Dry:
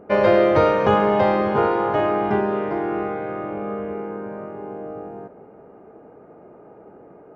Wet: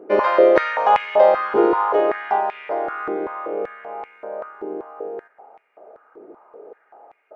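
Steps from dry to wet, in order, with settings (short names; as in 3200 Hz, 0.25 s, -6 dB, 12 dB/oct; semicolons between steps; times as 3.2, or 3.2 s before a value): stepped high-pass 5.2 Hz 340–2300 Hz; gain -3 dB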